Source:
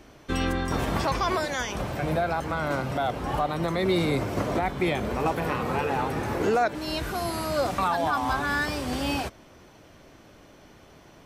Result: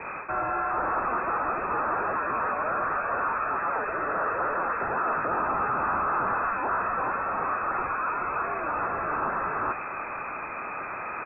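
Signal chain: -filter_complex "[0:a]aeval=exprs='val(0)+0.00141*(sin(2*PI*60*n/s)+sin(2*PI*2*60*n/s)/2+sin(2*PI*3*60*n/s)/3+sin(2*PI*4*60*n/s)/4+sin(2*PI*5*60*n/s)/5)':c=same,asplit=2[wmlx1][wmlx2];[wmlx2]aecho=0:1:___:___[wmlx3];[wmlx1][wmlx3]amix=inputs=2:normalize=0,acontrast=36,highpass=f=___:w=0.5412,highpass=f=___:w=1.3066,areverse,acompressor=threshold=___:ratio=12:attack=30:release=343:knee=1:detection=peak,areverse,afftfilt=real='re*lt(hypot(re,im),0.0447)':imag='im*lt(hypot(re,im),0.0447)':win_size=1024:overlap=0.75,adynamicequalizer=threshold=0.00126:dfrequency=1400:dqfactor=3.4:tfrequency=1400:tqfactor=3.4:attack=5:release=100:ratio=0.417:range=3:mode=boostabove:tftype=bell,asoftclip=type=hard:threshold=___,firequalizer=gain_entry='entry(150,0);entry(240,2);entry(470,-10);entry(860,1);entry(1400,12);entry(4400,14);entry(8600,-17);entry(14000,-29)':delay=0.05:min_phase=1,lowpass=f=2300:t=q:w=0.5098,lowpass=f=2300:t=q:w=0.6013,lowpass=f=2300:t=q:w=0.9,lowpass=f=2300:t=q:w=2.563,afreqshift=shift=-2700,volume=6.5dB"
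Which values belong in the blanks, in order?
431, 0.531, 120, 120, -29dB, -39.5dB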